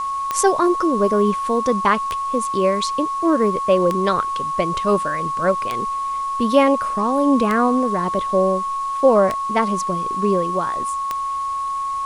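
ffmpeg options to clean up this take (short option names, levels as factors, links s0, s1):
-af "adeclick=t=4,bandreject=f=1100:w=30,afwtdn=0.0063"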